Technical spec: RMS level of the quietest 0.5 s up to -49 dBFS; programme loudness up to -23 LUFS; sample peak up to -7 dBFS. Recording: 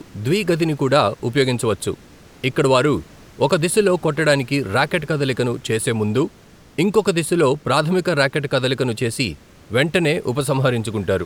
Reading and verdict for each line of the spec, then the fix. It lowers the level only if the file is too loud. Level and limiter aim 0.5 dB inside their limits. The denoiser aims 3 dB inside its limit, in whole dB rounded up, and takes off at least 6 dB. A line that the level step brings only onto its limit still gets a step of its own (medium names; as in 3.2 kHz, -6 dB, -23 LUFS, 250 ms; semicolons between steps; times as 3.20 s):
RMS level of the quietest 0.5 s -47 dBFS: fail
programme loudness -19.0 LUFS: fail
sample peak -2.5 dBFS: fail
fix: trim -4.5 dB; peak limiter -7.5 dBFS